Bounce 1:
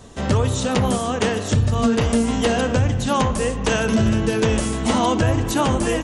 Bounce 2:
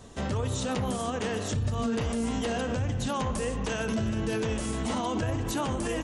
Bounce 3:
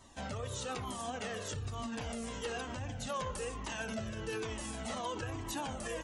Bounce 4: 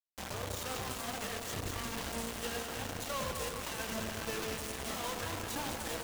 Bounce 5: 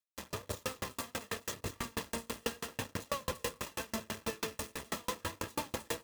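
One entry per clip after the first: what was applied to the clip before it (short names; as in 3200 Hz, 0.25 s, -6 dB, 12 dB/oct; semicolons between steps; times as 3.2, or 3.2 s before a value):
limiter -16 dBFS, peak gain reduction 9 dB; gain -5.5 dB
low shelf 310 Hz -8.5 dB; cascading flanger falling 1.1 Hz; gain -1.5 dB
requantised 6-bit, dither none; echo with dull and thin repeats by turns 0.104 s, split 870 Hz, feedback 80%, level -4.5 dB; gain -2 dB
notch comb 750 Hz; dB-ramp tremolo decaying 6.1 Hz, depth 38 dB; gain +8.5 dB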